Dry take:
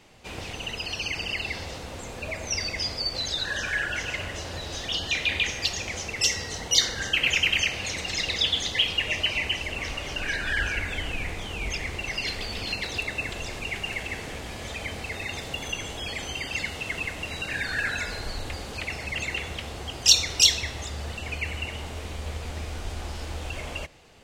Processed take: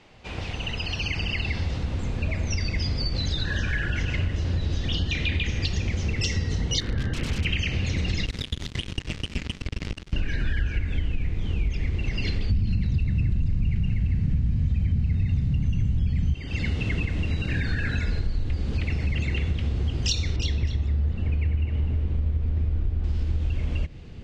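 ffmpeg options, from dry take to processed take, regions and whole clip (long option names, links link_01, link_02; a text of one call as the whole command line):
ffmpeg -i in.wav -filter_complex "[0:a]asettb=1/sr,asplit=3[link_01][link_02][link_03];[link_01]atrim=end=6.804[link_04];[link_02]atrim=start=6.8:end=7.45,asetpts=PTS-STARTPTS,afade=type=in:duration=0.004:curve=qsin,afade=type=out:start_time=0.646:duration=0.004:curve=qsin,lowpass=1900,aeval=exprs='(mod(20*val(0)+1,2)-1)/20':channel_layout=same[link_05];[link_03]atrim=start=7.446[link_06];[link_04][link_05]acrossfade=duration=0.004:curve1=hsin:curve2=qsin[link_07];[link_07][link_06]acrossfade=duration=0.004:curve1=qsin:curve2=hsin,asettb=1/sr,asplit=3[link_08][link_09][link_10];[link_08]atrim=end=8.264[link_11];[link_09]atrim=start=8.26:end=10.13,asetpts=PTS-STARTPTS,afade=type=in:duration=0.004:curve=qsin,afade=type=out:start_time=1.866:duration=0.004:curve=qsin,acompressor=threshold=-26dB:ratio=6:attack=3.2:release=140:knee=1:detection=peak,acrusher=bits=3:mix=0:aa=0.5[link_12];[link_10]atrim=start=10.126[link_13];[link_11][link_12]acrossfade=duration=0.004:curve1=hsin:curve2=qsin[link_14];[link_14][link_13]acrossfade=duration=0.004:curve1=qsin:curve2=hsin,asettb=1/sr,asplit=3[link_15][link_16][link_17];[link_15]atrim=end=12.504[link_18];[link_16]atrim=start=12.5:end=16.34,asetpts=PTS-STARTPTS,afade=type=in:duration=0.004:curve=qsin,afade=type=out:start_time=3.836:duration=0.004:curve=qsin,lowshelf=frequency=260:width_type=q:width=1.5:gain=13.5,bandreject=frequency=3400:width=10,asoftclip=type=hard:threshold=-20.5dB[link_19];[link_17]atrim=start=16.336[link_20];[link_18][link_19]acrossfade=duration=0.004:curve1=hsin:curve2=qsin[link_21];[link_21][link_20]acrossfade=duration=0.004:curve1=qsin:curve2=hsin,asettb=1/sr,asplit=3[link_22][link_23][link_24];[link_22]atrim=end=20.364[link_25];[link_23]atrim=start=20.36:end=23.04,asetpts=PTS-STARTPTS,afade=type=in:duration=0.004:curve=qsin,afade=type=out:start_time=2.676:duration=0.004:curve=qsin,lowpass=frequency=1500:poles=1,aecho=1:1:252:0.355,atrim=end_sample=118188[link_26];[link_24]atrim=start=23.036[link_27];[link_25][link_26]acrossfade=duration=0.004:curve1=hsin:curve2=qsin[link_28];[link_28][link_27]acrossfade=duration=0.004:curve1=qsin:curve2=hsin,lowpass=4600,asubboost=boost=9:cutoff=240,acompressor=threshold=-23dB:ratio=6,volume=1.5dB" out.wav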